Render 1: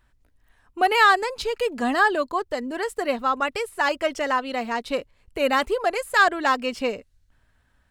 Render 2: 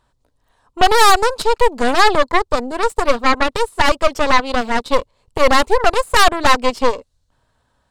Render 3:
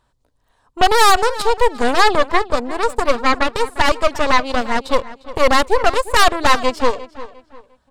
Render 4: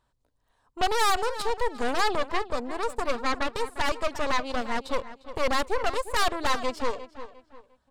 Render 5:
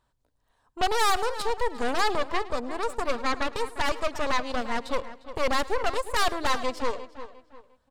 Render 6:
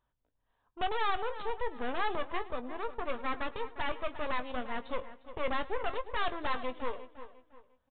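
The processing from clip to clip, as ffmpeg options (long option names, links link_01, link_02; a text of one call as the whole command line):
ffmpeg -i in.wav -af "equalizer=frequency=125:width_type=o:width=1:gain=7,equalizer=frequency=250:width_type=o:width=1:gain=3,equalizer=frequency=500:width_type=o:width=1:gain=10,equalizer=frequency=1000:width_type=o:width=1:gain=11,equalizer=frequency=2000:width_type=o:width=1:gain=-4,equalizer=frequency=4000:width_type=o:width=1:gain=9,equalizer=frequency=8000:width_type=o:width=1:gain=8,aeval=exprs='1.41*(cos(1*acos(clip(val(0)/1.41,-1,1)))-cos(1*PI/2))+0.355*(cos(8*acos(clip(val(0)/1.41,-1,1)))-cos(8*PI/2))':channel_layout=same,volume=-4.5dB" out.wav
ffmpeg -i in.wav -filter_complex "[0:a]asplit=2[link_01][link_02];[link_02]adelay=352,lowpass=frequency=3800:poles=1,volume=-16dB,asplit=2[link_03][link_04];[link_04]adelay=352,lowpass=frequency=3800:poles=1,volume=0.33,asplit=2[link_05][link_06];[link_06]adelay=352,lowpass=frequency=3800:poles=1,volume=0.33[link_07];[link_01][link_03][link_05][link_07]amix=inputs=4:normalize=0,volume=-1dB" out.wav
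ffmpeg -i in.wav -af "asoftclip=type=tanh:threshold=-7dB,volume=-8.5dB" out.wav
ffmpeg -i in.wav -af "aecho=1:1:106|212:0.0944|0.0227" out.wav
ffmpeg -i in.wav -filter_complex "[0:a]asplit=2[link_01][link_02];[link_02]adelay=20,volume=-11.5dB[link_03];[link_01][link_03]amix=inputs=2:normalize=0,aresample=8000,aresample=44100,volume=-8dB" out.wav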